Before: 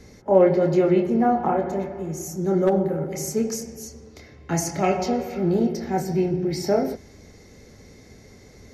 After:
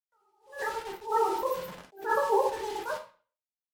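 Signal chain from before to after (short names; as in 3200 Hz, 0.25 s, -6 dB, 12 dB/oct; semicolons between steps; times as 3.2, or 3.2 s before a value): gate with hold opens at -36 dBFS; bell 1200 Hz -8 dB 1.7 oct; spectral gate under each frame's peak -10 dB strong; limiter -18.5 dBFS, peak gain reduction 9.5 dB; random-step tremolo 1.2 Hz, depth 75%; bit-crush 7-bit; air absorption 100 m; plate-style reverb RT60 0.93 s, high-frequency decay 0.75×, DRR 1 dB; speed mistake 33 rpm record played at 78 rpm; attack slew limiter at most 170 dB/s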